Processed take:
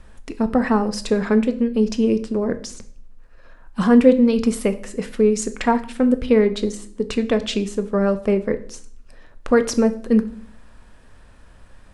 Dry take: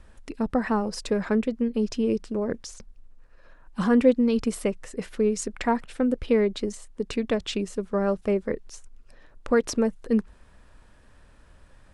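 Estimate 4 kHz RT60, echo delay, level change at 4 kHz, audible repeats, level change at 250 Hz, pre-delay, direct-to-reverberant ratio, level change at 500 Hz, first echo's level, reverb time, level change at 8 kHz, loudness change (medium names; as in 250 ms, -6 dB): 0.50 s, no echo, +5.5 dB, no echo, +7.0 dB, 4 ms, 9.0 dB, +6.0 dB, no echo, 0.50 s, +5.5 dB, +6.5 dB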